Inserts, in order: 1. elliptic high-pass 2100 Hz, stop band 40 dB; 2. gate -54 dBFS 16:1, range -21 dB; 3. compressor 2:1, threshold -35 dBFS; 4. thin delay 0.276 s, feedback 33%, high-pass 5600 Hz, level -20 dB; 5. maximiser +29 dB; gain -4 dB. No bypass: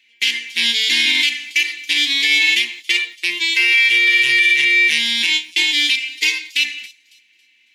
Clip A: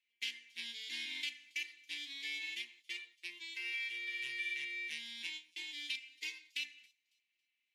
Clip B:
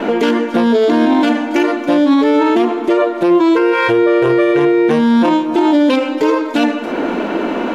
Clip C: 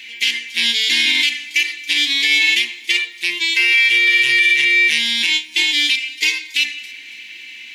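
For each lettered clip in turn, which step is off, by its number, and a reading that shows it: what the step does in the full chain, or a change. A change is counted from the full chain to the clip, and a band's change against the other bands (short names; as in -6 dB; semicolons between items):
5, crest factor change +7.0 dB; 1, crest factor change -5.0 dB; 2, momentary loudness spread change +2 LU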